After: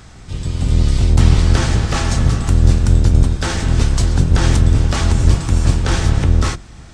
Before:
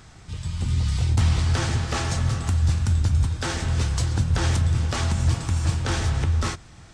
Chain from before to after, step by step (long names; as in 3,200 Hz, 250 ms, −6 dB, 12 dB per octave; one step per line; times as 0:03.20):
sub-octave generator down 1 octave, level +1 dB
level +6 dB